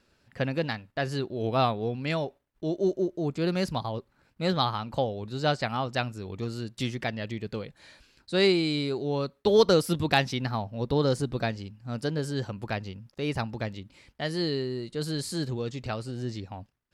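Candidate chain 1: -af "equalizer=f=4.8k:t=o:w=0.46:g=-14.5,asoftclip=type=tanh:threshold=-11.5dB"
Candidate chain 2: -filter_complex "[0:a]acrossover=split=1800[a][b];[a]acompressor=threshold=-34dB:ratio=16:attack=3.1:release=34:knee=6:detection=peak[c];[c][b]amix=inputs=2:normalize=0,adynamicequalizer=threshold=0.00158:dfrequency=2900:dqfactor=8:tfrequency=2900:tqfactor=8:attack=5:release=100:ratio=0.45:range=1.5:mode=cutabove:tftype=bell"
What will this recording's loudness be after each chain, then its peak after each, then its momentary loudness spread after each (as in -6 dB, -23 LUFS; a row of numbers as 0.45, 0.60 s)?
-30.0, -35.5 LUFS; -12.5, -10.5 dBFS; 11, 10 LU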